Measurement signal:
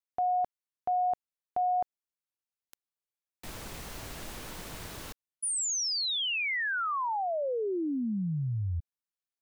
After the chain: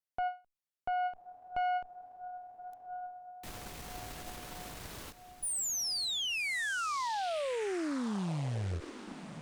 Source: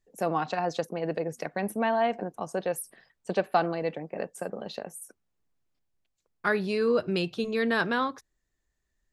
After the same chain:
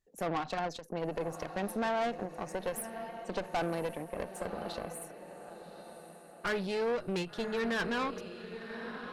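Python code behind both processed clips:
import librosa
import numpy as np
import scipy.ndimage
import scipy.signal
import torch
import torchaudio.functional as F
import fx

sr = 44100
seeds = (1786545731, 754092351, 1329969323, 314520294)

y = fx.echo_diffused(x, sr, ms=1110, feedback_pct=45, wet_db=-12.5)
y = fx.tube_stage(y, sr, drive_db=28.0, bias=0.65)
y = fx.end_taper(y, sr, db_per_s=220.0)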